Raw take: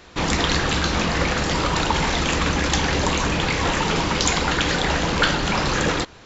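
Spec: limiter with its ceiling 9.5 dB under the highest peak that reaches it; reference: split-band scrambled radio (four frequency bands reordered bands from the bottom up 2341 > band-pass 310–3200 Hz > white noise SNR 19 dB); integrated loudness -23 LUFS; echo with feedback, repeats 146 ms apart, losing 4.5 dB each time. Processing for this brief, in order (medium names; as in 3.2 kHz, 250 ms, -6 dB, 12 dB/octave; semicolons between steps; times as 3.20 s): peak limiter -12 dBFS; feedback delay 146 ms, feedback 60%, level -4.5 dB; four frequency bands reordered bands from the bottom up 2341; band-pass 310–3200 Hz; white noise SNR 19 dB; trim +1 dB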